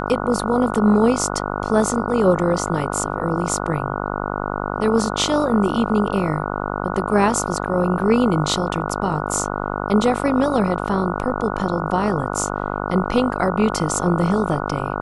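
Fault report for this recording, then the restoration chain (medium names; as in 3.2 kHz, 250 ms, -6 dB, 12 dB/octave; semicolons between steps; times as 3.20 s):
buzz 50 Hz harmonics 29 -25 dBFS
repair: de-hum 50 Hz, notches 29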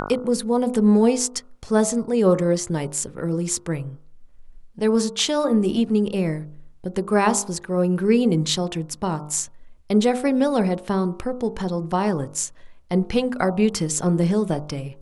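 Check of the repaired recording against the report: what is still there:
nothing left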